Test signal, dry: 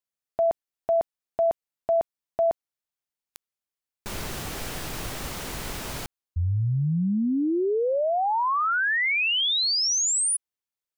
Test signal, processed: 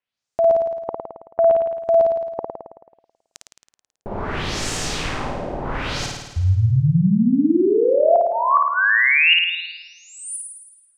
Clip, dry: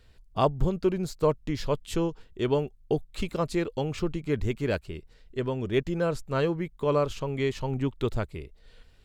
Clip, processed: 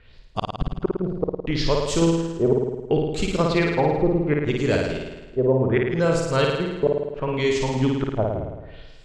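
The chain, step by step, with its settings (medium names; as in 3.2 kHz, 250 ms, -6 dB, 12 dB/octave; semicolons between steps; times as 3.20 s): LFO low-pass sine 0.69 Hz 590–7600 Hz; inverted gate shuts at -14 dBFS, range -39 dB; flutter echo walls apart 9.3 m, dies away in 1.1 s; trim +4.5 dB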